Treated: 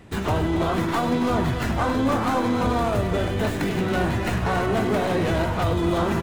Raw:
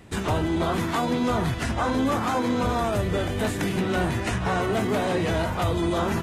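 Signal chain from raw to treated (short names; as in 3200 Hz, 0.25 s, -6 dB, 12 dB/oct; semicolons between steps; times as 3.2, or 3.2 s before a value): tracing distortion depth 0.099 ms; high shelf 4000 Hz -5 dB; loudspeakers at several distances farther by 34 m -12 dB, 94 m -11 dB; gain +1.5 dB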